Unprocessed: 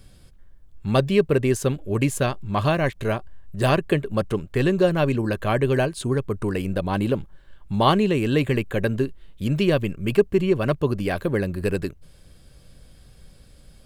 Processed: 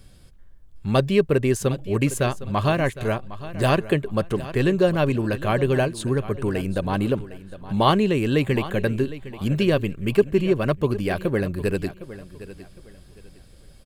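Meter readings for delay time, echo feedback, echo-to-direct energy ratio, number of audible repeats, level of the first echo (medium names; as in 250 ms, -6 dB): 759 ms, 27%, -15.0 dB, 2, -15.5 dB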